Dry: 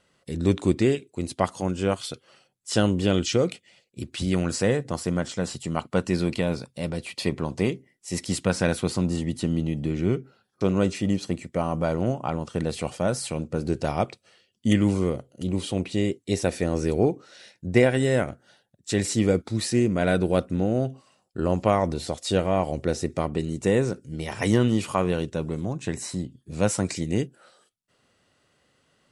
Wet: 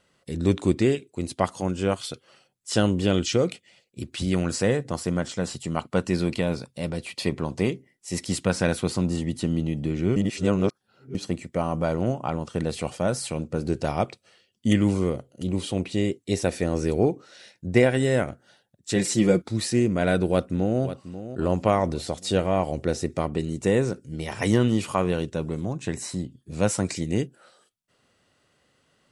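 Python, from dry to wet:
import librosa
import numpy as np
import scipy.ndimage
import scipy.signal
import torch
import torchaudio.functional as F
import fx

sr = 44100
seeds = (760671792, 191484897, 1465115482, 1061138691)

y = fx.comb(x, sr, ms=5.7, depth=0.65, at=(18.95, 19.42))
y = fx.echo_throw(y, sr, start_s=20.28, length_s=0.53, ms=540, feedback_pct=45, wet_db=-12.5)
y = fx.edit(y, sr, fx.reverse_span(start_s=10.16, length_s=0.99), tone=tone)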